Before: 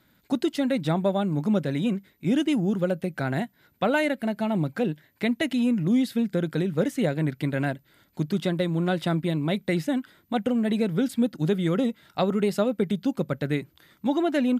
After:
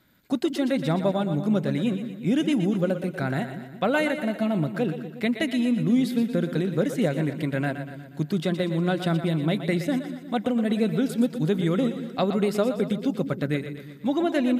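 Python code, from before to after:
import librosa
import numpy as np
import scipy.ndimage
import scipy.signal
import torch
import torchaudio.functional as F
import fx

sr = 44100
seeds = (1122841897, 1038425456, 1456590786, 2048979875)

y = fx.notch(x, sr, hz=870.0, q=16.0)
y = fx.echo_split(y, sr, split_hz=350.0, low_ms=176, high_ms=120, feedback_pct=52, wet_db=-9.5)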